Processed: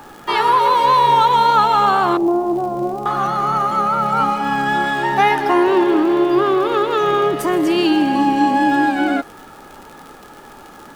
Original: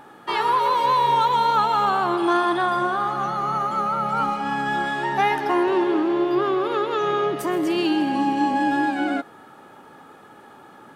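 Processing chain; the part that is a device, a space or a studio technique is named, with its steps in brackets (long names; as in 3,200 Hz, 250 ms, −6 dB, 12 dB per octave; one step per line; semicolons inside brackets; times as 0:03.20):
0:02.17–0:03.06: inverse Chebyshev low-pass filter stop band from 3,100 Hz, stop band 70 dB
vinyl LP (tape wow and flutter 12 cents; surface crackle 75 per second −35 dBFS; pink noise bed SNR 34 dB)
level +6 dB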